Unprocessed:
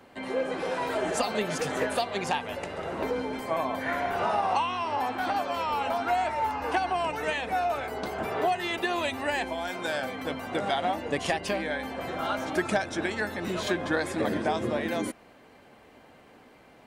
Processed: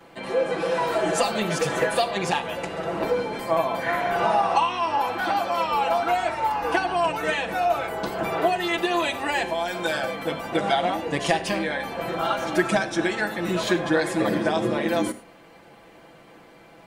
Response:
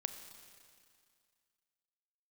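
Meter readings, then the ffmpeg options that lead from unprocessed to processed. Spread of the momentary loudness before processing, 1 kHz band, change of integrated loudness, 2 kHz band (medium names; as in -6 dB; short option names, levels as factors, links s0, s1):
5 LU, +4.5 dB, +5.0 dB, +4.5 dB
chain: -filter_complex "[0:a]asplit=2[s0][s1];[1:a]atrim=start_sample=2205,afade=t=out:st=0.16:d=0.01,atrim=end_sample=7497,adelay=6[s2];[s1][s2]afir=irnorm=-1:irlink=0,volume=1.68[s3];[s0][s3]amix=inputs=2:normalize=0"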